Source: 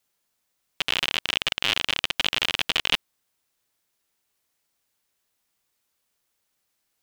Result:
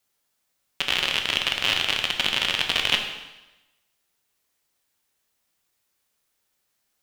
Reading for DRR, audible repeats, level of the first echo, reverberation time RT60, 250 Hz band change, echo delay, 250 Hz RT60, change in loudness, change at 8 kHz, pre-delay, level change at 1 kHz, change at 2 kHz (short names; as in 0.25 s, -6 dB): 3.5 dB, none, none, 1.0 s, +1.0 dB, none, 1.1 s, +1.5 dB, +1.5 dB, 6 ms, +1.5 dB, +2.0 dB